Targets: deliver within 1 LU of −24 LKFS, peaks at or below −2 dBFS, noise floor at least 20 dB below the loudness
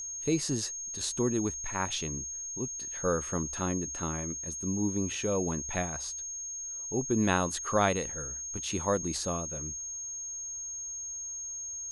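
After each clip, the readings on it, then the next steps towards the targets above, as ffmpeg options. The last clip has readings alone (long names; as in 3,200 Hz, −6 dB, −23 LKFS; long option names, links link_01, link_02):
interfering tone 6,500 Hz; level of the tone −36 dBFS; integrated loudness −32.0 LKFS; sample peak −11.5 dBFS; target loudness −24.0 LKFS
→ -af "bandreject=frequency=6500:width=30"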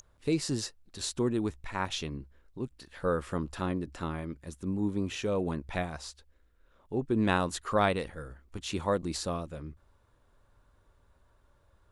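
interfering tone none found; integrated loudness −33.0 LKFS; sample peak −11.5 dBFS; target loudness −24.0 LKFS
→ -af "volume=9dB"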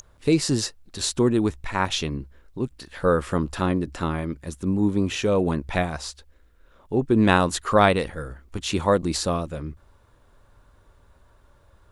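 integrated loudness −24.0 LKFS; sample peak −2.5 dBFS; background noise floor −57 dBFS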